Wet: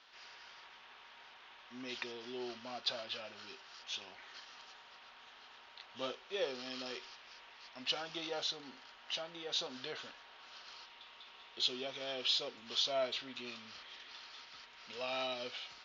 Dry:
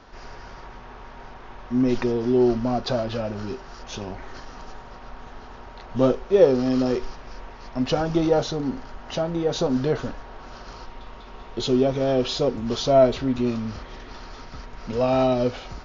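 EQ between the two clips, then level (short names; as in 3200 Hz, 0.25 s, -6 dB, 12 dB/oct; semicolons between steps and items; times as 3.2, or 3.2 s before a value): band-pass 3300 Hz, Q 1.8; -1.0 dB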